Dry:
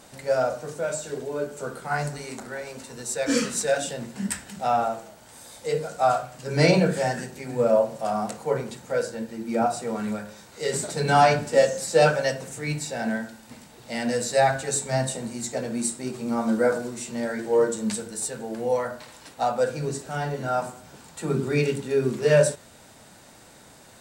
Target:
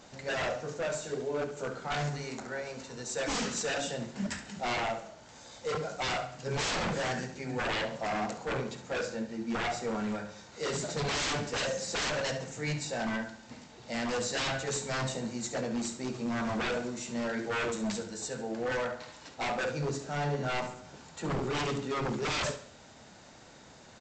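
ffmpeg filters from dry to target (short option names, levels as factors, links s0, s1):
-af "aresample=16000,aeval=exprs='0.0631*(abs(mod(val(0)/0.0631+3,4)-2)-1)':c=same,aresample=44100,aecho=1:1:69|138|207|276:0.251|0.098|0.0382|0.0149,volume=0.708"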